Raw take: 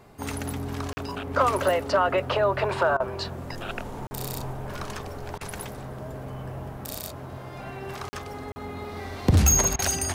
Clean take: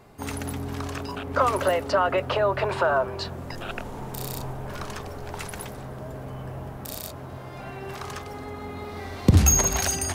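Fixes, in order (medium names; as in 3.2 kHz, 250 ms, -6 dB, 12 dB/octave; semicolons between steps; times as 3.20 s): clip repair -12.5 dBFS; interpolate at 0.93/4.07/8.09/8.52 s, 40 ms; interpolate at 2.97/5.38/9.76 s, 29 ms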